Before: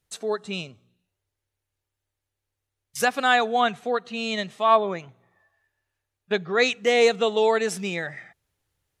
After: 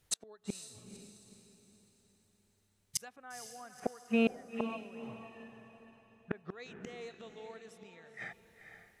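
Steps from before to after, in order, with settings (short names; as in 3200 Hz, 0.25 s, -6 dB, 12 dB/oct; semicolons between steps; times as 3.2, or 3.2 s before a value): 3.16–6.45 LPF 2100 Hz 24 dB/oct; flipped gate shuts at -24 dBFS, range -34 dB; diffused feedback echo 0.476 s, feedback 42%, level -9.5 dB; gain +5 dB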